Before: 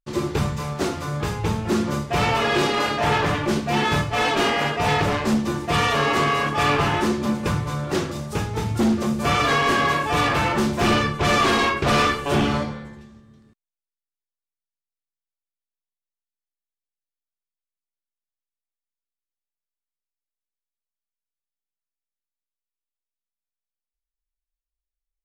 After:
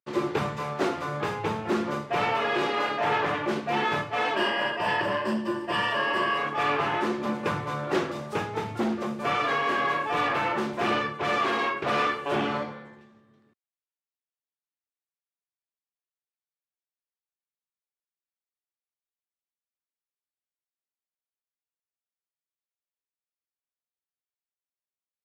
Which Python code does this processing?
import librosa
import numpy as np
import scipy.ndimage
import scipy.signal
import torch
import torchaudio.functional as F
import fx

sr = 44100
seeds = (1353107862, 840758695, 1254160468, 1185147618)

y = fx.ripple_eq(x, sr, per_octave=1.3, db=12, at=(4.36, 6.38))
y = fx.rider(y, sr, range_db=4, speed_s=0.5)
y = scipy.signal.sosfilt(scipy.signal.butter(4, 99.0, 'highpass', fs=sr, output='sos'), y)
y = fx.bass_treble(y, sr, bass_db=-11, treble_db=-13)
y = y * 10.0 ** (-3.5 / 20.0)